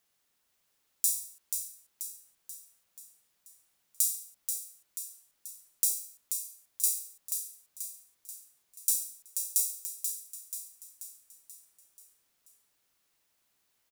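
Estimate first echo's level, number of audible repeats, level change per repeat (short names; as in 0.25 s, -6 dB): -6.5 dB, 6, -5.5 dB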